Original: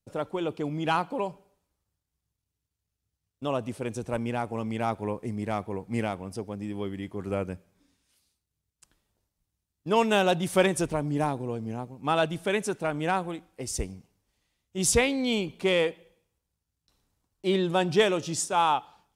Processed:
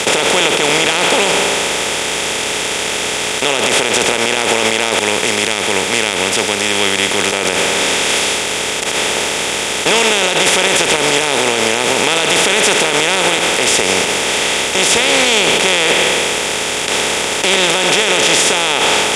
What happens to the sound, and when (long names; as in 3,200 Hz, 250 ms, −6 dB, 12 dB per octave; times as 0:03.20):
0:03.60–0:04.37: downward compressor, threshold −36 dBFS
0:04.99–0:07.33: guitar amp tone stack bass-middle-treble 6-0-2
whole clip: compressor on every frequency bin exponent 0.2; meter weighting curve D; brickwall limiter −6 dBFS; level +4.5 dB